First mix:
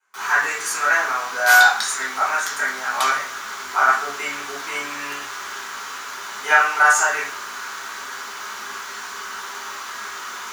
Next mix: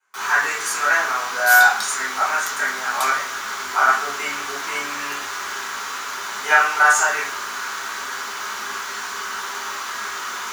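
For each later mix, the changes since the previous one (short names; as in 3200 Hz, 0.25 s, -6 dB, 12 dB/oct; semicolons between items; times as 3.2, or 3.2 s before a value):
first sound +3.5 dB; second sound: add differentiator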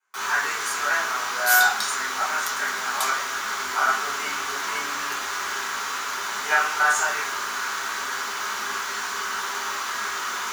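speech -6.0 dB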